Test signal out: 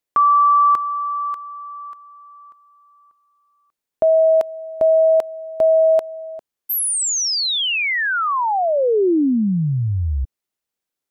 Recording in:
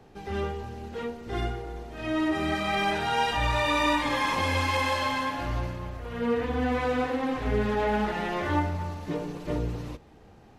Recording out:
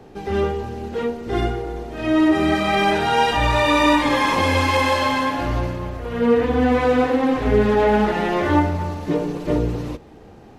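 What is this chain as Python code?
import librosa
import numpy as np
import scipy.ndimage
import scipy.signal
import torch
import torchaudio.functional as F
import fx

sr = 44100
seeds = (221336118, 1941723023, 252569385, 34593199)

y = fx.peak_eq(x, sr, hz=360.0, db=5.0, octaves=1.8)
y = y * 10.0 ** (6.5 / 20.0)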